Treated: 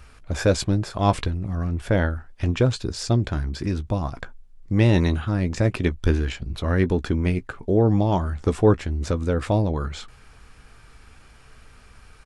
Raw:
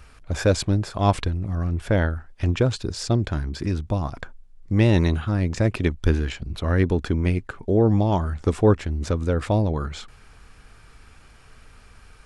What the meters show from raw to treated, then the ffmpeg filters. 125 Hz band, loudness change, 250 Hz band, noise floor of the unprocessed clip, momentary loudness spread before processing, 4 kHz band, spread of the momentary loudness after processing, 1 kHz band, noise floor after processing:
-0.5 dB, 0.0 dB, 0.0 dB, -50 dBFS, 9 LU, 0.0 dB, 9 LU, +0.5 dB, -50 dBFS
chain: -filter_complex "[0:a]asplit=2[s0][s1];[s1]adelay=16,volume=0.224[s2];[s0][s2]amix=inputs=2:normalize=0"

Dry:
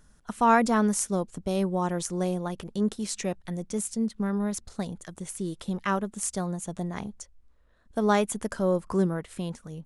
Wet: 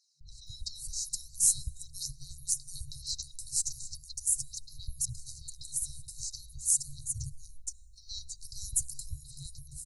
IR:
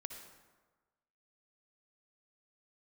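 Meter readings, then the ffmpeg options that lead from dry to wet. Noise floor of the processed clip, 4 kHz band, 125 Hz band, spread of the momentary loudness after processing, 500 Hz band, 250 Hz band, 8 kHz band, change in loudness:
-53 dBFS, +1.5 dB, -12.0 dB, 17 LU, under -40 dB, under -30 dB, +5.5 dB, -5.0 dB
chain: -filter_complex "[0:a]acrossover=split=1100|5500[s0][s1][s2];[s0]adelay=210[s3];[s2]adelay=470[s4];[s3][s1][s4]amix=inputs=3:normalize=0,asplit=2[s5][s6];[1:a]atrim=start_sample=2205[s7];[s6][s7]afir=irnorm=-1:irlink=0,volume=0.188[s8];[s5][s8]amix=inputs=2:normalize=0,afftfilt=real='re*(1-between(b*sr/4096,150,3800))':imag='im*(1-between(b*sr/4096,150,3800))':win_size=4096:overlap=0.75,aphaser=in_gain=1:out_gain=1:delay=2.5:decay=0.34:speed=0.42:type=triangular,volume=1.88"

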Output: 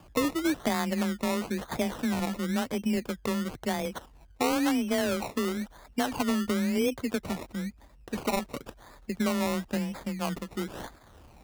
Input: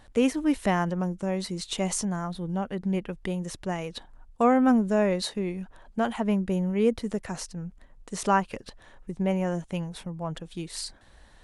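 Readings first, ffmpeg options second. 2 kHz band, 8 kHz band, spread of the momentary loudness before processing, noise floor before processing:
+1.0 dB, -2.0 dB, 15 LU, -54 dBFS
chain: -filter_complex "[0:a]afreqshift=23,acrossover=split=93|3900[s0][s1][s2];[s0]acompressor=threshold=0.00112:ratio=4[s3];[s1]acompressor=threshold=0.0447:ratio=4[s4];[s2]acompressor=threshold=0.00398:ratio=4[s5];[s3][s4][s5]amix=inputs=3:normalize=0,acrusher=samples=22:mix=1:aa=0.000001:lfo=1:lforange=13.2:lforate=0.98,volume=1.33"

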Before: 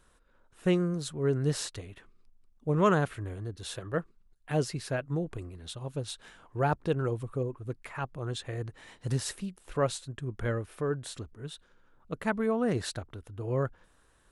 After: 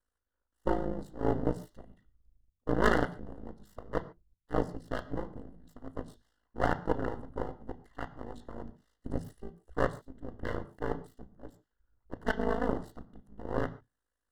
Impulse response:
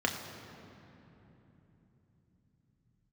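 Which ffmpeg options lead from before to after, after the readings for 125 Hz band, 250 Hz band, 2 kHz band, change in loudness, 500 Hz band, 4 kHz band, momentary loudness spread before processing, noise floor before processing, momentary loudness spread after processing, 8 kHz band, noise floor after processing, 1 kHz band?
-8.5 dB, -3.5 dB, 0.0 dB, -2.5 dB, -3.0 dB, -10.0 dB, 14 LU, -65 dBFS, 20 LU, under -15 dB, under -85 dBFS, -0.5 dB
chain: -filter_complex "[0:a]bandreject=f=60:t=h:w=6,bandreject=f=120:t=h:w=6,bandreject=f=180:t=h:w=6,bandreject=f=240:t=h:w=6,bandreject=f=300:t=h:w=6,afwtdn=0.0158,aeval=exprs='val(0)*sin(2*PI*27*n/s)':c=same,aeval=exprs='0.266*(cos(1*acos(clip(val(0)/0.266,-1,1)))-cos(1*PI/2))+0.0188*(cos(3*acos(clip(val(0)/0.266,-1,1)))-cos(3*PI/2))+0.0841*(cos(6*acos(clip(val(0)/0.266,-1,1)))-cos(6*PI/2))+0.015*(cos(8*acos(clip(val(0)/0.266,-1,1)))-cos(8*PI/2))':c=same,aeval=exprs='abs(val(0))':c=same,asuperstop=centerf=2400:order=12:qfactor=3.4,asplit=2[s0][s1];[1:a]atrim=start_sample=2205,atrim=end_sample=6615[s2];[s1][s2]afir=irnorm=-1:irlink=0,volume=0.251[s3];[s0][s3]amix=inputs=2:normalize=0,volume=0.794"

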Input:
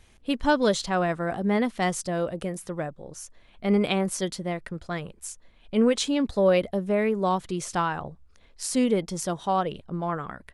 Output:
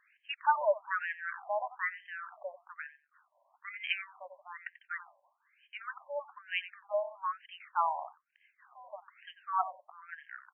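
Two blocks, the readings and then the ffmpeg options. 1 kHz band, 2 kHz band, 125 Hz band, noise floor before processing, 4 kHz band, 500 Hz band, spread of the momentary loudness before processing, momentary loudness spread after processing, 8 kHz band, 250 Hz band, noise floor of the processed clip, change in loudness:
-5.0 dB, -4.0 dB, under -40 dB, -57 dBFS, -11.5 dB, -13.0 dB, 13 LU, 17 LU, under -40 dB, under -40 dB, -78 dBFS, -9.5 dB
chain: -af "adynamicsmooth=sensitivity=3:basefreq=5800,asubboost=boost=9:cutoff=130,aecho=1:1:90|180:0.2|0.0319,afftfilt=real='re*between(b*sr/1024,750*pow(2300/750,0.5+0.5*sin(2*PI*1.1*pts/sr))/1.41,750*pow(2300/750,0.5+0.5*sin(2*PI*1.1*pts/sr))*1.41)':imag='im*between(b*sr/1024,750*pow(2300/750,0.5+0.5*sin(2*PI*1.1*pts/sr))/1.41,750*pow(2300/750,0.5+0.5*sin(2*PI*1.1*pts/sr))*1.41)':win_size=1024:overlap=0.75"

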